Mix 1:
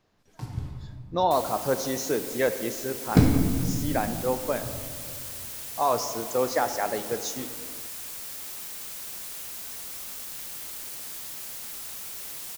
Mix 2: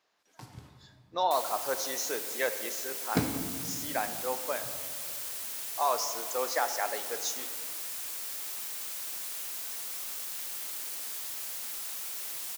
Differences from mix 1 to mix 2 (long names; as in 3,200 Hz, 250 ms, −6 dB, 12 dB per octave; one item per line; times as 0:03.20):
speech: add high-pass filter 720 Hz 6 dB per octave
first sound: send −6.0 dB
master: add high-pass filter 480 Hz 6 dB per octave